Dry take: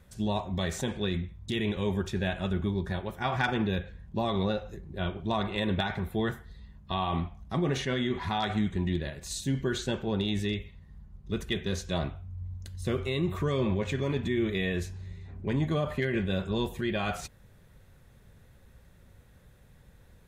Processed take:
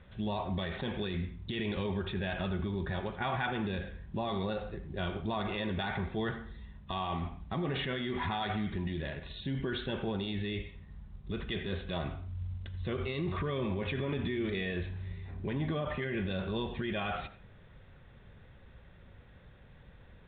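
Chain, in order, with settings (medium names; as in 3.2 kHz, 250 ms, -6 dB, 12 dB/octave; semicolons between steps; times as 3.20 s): peak limiter -27.5 dBFS, peak gain reduction 9.5 dB; bass shelf 490 Hz -3 dB; on a send at -13 dB: high-pass 150 Hz 6 dB/octave + reverberation RT60 0.40 s, pre-delay 77 ms; on the sum: trim +3.5 dB; µ-law 64 kbps 8 kHz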